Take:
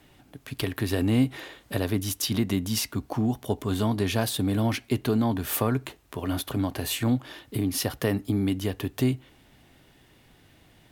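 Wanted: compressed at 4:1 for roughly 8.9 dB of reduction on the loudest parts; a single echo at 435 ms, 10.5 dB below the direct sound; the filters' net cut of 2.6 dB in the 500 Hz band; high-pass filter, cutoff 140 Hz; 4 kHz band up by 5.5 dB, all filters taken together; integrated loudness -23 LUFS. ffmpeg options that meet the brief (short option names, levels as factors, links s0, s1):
-af "highpass=140,equalizer=f=500:t=o:g=-3.5,equalizer=f=4000:t=o:g=7,acompressor=threshold=0.0282:ratio=4,aecho=1:1:435:0.299,volume=3.55"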